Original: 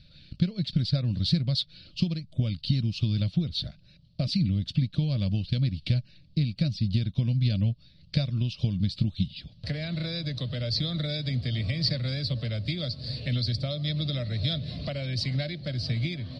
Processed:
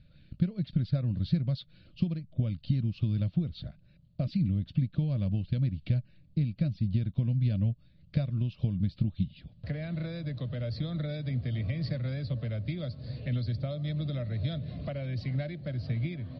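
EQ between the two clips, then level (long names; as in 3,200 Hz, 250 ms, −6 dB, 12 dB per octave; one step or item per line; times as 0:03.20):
low-pass filter 1,800 Hz 12 dB per octave
−2.5 dB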